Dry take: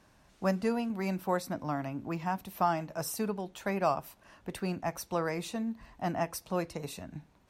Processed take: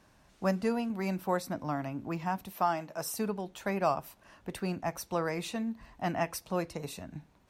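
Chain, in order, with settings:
0:02.52–0:03.14: high-pass filter 270 Hz 6 dB per octave
0:05.36–0:06.41: dynamic equaliser 2,400 Hz, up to +5 dB, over −50 dBFS, Q 1.1

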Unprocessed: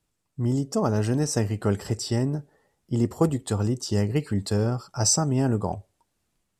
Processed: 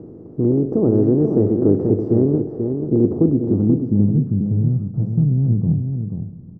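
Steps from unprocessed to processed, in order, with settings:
compressor on every frequency bin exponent 0.4
low-pass filter sweep 370 Hz → 160 Hz, 0:02.96–0:04.37
slap from a distant wall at 83 metres, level −6 dB

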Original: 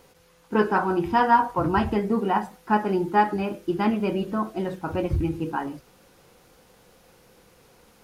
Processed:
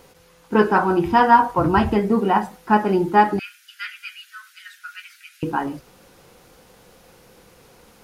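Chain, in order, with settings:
0:03.39–0:05.43: Chebyshev high-pass filter 1,400 Hz, order 6
level +5 dB

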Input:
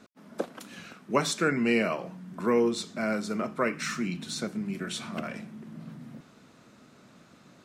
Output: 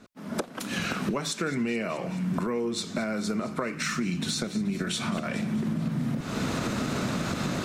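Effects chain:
camcorder AGC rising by 44 dB per second
low-shelf EQ 90 Hz +10.5 dB
delay with a high-pass on its return 214 ms, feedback 67%, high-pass 2,300 Hz, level −14.5 dB
downward compressor 4 to 1, threshold −26 dBFS, peak gain reduction 8 dB

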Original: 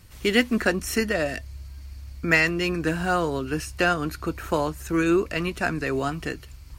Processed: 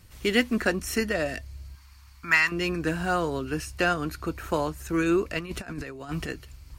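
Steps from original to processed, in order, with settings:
0:01.75–0:02.52: low shelf with overshoot 740 Hz −10.5 dB, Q 3
0:05.39–0:06.29: compressor whose output falls as the input rises −31 dBFS, ratio −0.5
level −2.5 dB

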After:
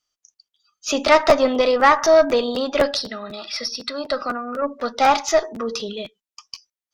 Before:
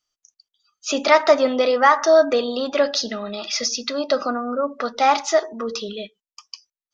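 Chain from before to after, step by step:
0:02.97–0:04.62: Chebyshev low-pass with heavy ripple 5,700 Hz, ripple 6 dB
tube saturation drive 6 dB, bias 0.5
regular buffer underruns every 0.25 s, samples 512, repeat, from 0:00.54
level +3 dB

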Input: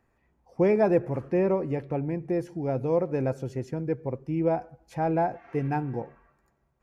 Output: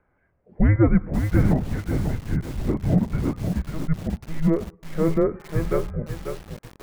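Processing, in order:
0:01.07–0:03.51: linear-prediction vocoder at 8 kHz whisper
single-sideband voice off tune −320 Hz 200–2,800 Hz
feedback echo at a low word length 542 ms, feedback 35%, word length 7 bits, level −6.5 dB
level +5.5 dB

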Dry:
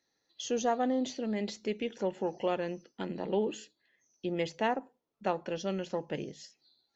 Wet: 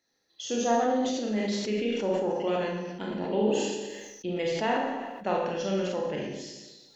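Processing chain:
four-comb reverb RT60 0.86 s, combs from 30 ms, DRR −2 dB
level that may fall only so fast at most 36 dB per second

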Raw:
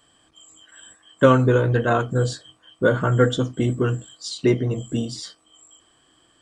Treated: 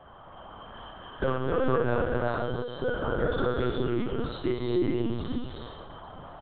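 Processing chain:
noise in a band 370–1,300 Hz −48 dBFS
downward compressor 3 to 1, threshold −26 dBFS, peak gain reduction 12.5 dB
high-pass filter 150 Hz 12 dB per octave
high-frequency loss of the air 120 metres
multi-tap delay 53/69/74/114/249/862 ms −5/−16/−14/−10/−12/−19 dB
reverb whose tail is shaped and stops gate 450 ms rising, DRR −2 dB
linear-prediction vocoder at 8 kHz pitch kept
level −3 dB

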